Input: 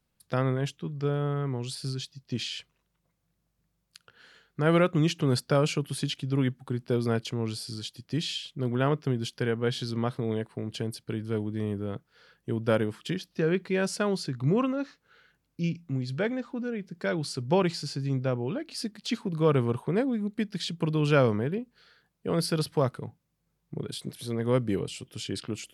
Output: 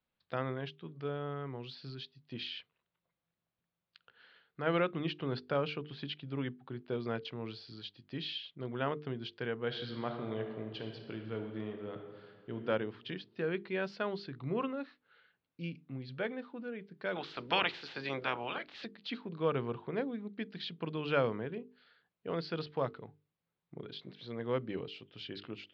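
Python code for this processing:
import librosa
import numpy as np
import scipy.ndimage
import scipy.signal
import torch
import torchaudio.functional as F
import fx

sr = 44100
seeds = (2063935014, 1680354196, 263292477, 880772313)

y = fx.air_absorb(x, sr, metres=74.0, at=(4.99, 6.97))
y = fx.reverb_throw(y, sr, start_s=9.66, length_s=2.9, rt60_s=1.7, drr_db=4.0)
y = fx.spec_clip(y, sr, under_db=26, at=(17.15, 18.84), fade=0.02)
y = scipy.signal.sosfilt(scipy.signal.butter(6, 4100.0, 'lowpass', fs=sr, output='sos'), y)
y = fx.low_shelf(y, sr, hz=230.0, db=-10.0)
y = fx.hum_notches(y, sr, base_hz=50, count=9)
y = F.gain(torch.from_numpy(y), -5.5).numpy()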